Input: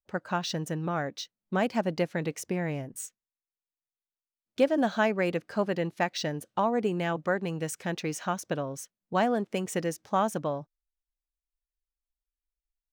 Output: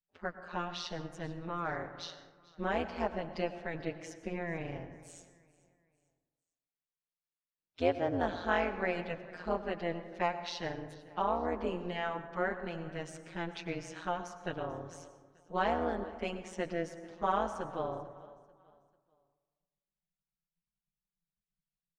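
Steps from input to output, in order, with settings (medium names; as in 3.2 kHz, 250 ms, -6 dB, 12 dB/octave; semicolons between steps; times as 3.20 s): low-pass 4.3 kHz 12 dB/octave; time stretch by phase-locked vocoder 1.7×; peaking EQ 190 Hz -5.5 dB 2.7 oct; feedback delay 442 ms, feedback 38%, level -21.5 dB; AM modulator 170 Hz, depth 95%; plate-style reverb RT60 1.4 s, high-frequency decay 0.35×, pre-delay 85 ms, DRR 11 dB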